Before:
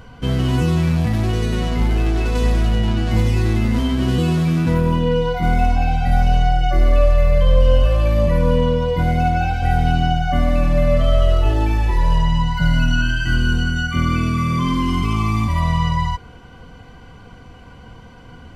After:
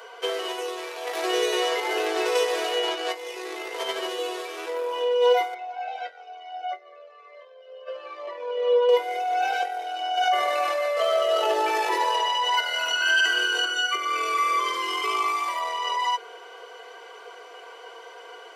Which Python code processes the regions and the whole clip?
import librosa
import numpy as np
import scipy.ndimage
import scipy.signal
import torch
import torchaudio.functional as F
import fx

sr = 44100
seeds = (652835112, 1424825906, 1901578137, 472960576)

y = fx.chain(x, sr, fx.highpass(hz=61.0, slope=12),
    fx.doubler(ms=25.0, db=-12.5), at=(1.14, 2.95))
y = fx.chain(y, sr, fx.air_absorb(metres=170.0),
    fx.comb_cascade(direction='falling', hz=1.1), at=(5.54, 8.89))
y = fx.chain(y, sr, fx.highpass(hz=230.0, slope=6),
    fx.echo_single(ms=307, db=-11.5),
    fx.env_flatten(amount_pct=100), at=(10.17, 13.65))
y = fx.over_compress(y, sr, threshold_db=-19.0, ratio=-0.5)
y = scipy.signal.sosfilt(scipy.signal.butter(16, 350.0, 'highpass', fs=sr, output='sos'), y)
y = y + 0.46 * np.pad(y, (int(4.4 * sr / 1000.0), 0))[:len(y)]